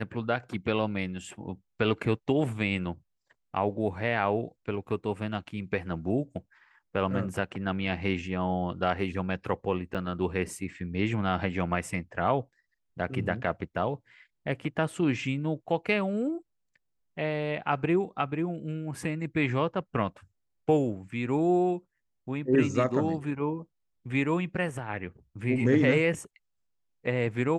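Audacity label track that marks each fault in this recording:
9.940000	9.950000	drop-out 6.7 ms

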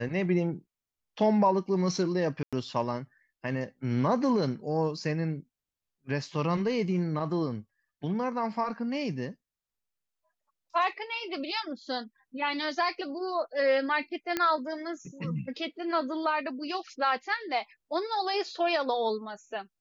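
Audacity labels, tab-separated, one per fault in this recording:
2.430000	2.530000	drop-out 96 ms
14.370000	14.370000	click −13 dBFS

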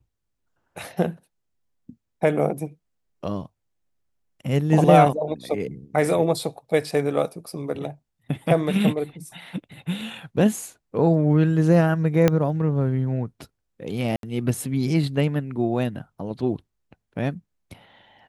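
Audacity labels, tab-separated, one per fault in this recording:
12.280000	12.280000	click −5 dBFS
14.160000	14.230000	drop-out 72 ms

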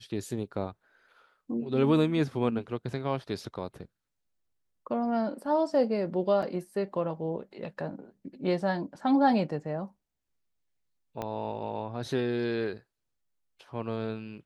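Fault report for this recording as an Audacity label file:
6.420000	6.430000	drop-out 6 ms
11.220000	11.220000	click −20 dBFS

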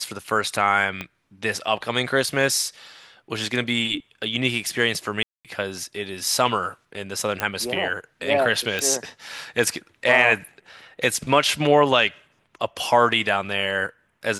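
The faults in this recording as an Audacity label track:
1.010000	1.010000	click −15 dBFS
5.230000	5.450000	drop-out 217 ms
7.400000	7.400000	click −8 dBFS
8.790000	8.790000	click

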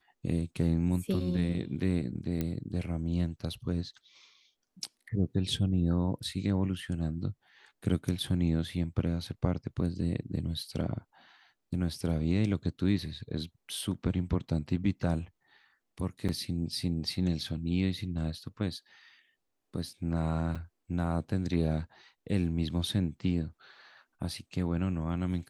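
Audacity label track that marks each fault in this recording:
2.410000	2.410000	click −19 dBFS
16.280000	16.290000	drop-out 7.2 ms
20.550000	20.560000	drop-out 5.4 ms

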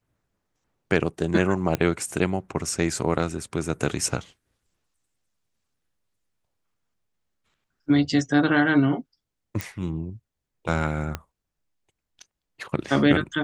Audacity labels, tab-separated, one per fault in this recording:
1.750000	1.750000	click −10 dBFS
9.610000	9.610000	click
11.150000	11.150000	click −14 dBFS

